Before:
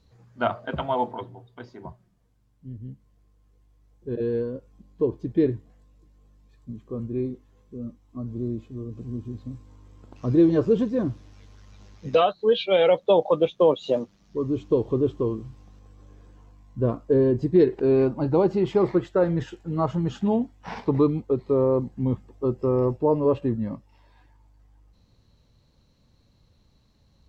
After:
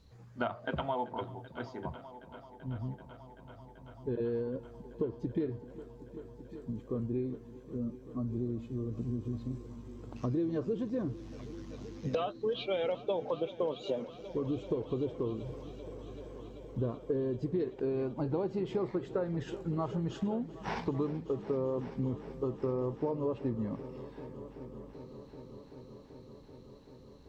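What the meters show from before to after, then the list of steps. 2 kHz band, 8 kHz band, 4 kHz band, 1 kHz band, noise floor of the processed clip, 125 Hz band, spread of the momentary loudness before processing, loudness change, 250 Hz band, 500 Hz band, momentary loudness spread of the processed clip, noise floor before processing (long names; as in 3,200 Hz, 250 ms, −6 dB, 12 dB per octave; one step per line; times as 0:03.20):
−8.5 dB, can't be measured, −11.0 dB, −11.0 dB, −54 dBFS, −8.5 dB, 20 LU, −12.5 dB, −10.5 dB, −12.0 dB, 16 LU, −62 dBFS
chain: downward compressor 6 to 1, threshold −31 dBFS, peak gain reduction 16.5 dB
echo machine with several playback heads 385 ms, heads all three, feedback 72%, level −20 dB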